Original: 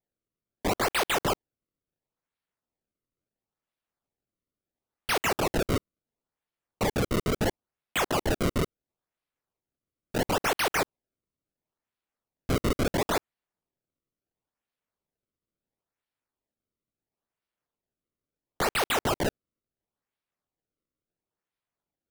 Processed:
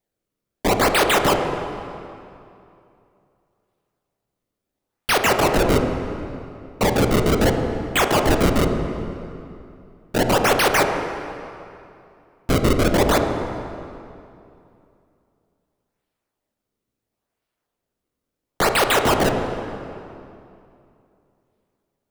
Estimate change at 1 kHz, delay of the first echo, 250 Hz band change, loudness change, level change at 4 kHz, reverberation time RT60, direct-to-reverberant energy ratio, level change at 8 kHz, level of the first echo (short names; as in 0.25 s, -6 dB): +10.0 dB, none, +10.5 dB, +8.5 dB, +8.5 dB, 2.6 s, 4.0 dB, +8.0 dB, none